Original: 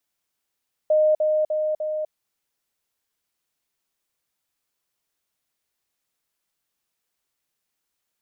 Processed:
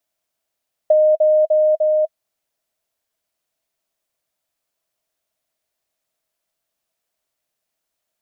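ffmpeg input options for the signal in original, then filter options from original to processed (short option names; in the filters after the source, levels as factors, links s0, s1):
-f lavfi -i "aevalsrc='pow(10,(-14.5-3*floor(t/0.3))/20)*sin(2*PI*616*t)*clip(min(mod(t,0.3),0.25-mod(t,0.3))/0.005,0,1)':d=1.2:s=44100"
-af "equalizer=f=640:t=o:w=0.28:g=13.5,acompressor=threshold=0.251:ratio=6"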